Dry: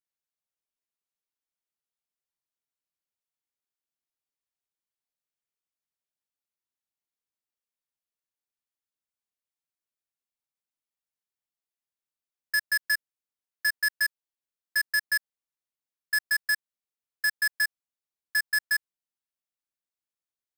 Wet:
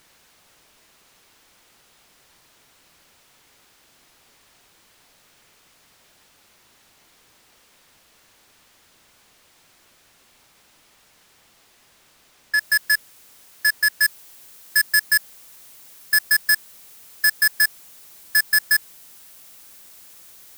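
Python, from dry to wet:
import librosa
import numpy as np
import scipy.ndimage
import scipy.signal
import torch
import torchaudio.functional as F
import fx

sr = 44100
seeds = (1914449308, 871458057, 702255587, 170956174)

y = x + 0.5 * 10.0 ** (-49.0 / 20.0) * np.sign(x)
y = fx.high_shelf(y, sr, hz=7300.0, db=fx.steps((0.0, -10.5), (12.58, 2.5), (14.02, 7.5)))
y = F.gain(torch.from_numpy(y), 6.5).numpy()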